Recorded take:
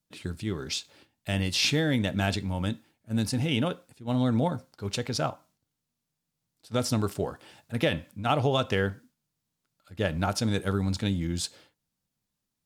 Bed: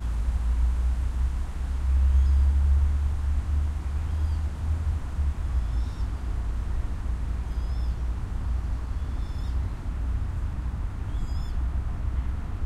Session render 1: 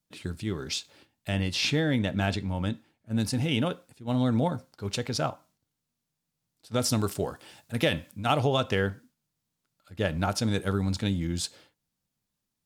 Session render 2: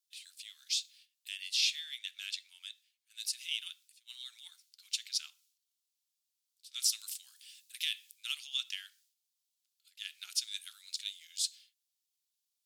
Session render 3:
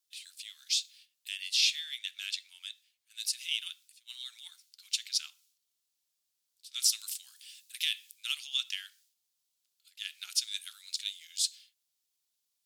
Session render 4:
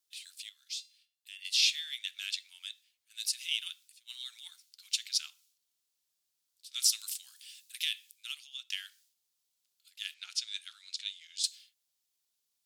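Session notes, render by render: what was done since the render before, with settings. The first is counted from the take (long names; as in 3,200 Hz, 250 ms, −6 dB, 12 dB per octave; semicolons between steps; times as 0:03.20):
0:01.29–0:03.20: high-shelf EQ 5,700 Hz −8 dB; 0:06.82–0:08.45: high-shelf EQ 3,900 Hz +6 dB
inverse Chebyshev high-pass filter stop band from 500 Hz, stop band 80 dB
level +3.5 dB
0:00.49–0:01.45: tuned comb filter 690 Hz, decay 0.4 s, mix 70%; 0:07.62–0:08.70: fade out, to −16.5 dB; 0:10.14–0:11.44: high-frequency loss of the air 78 metres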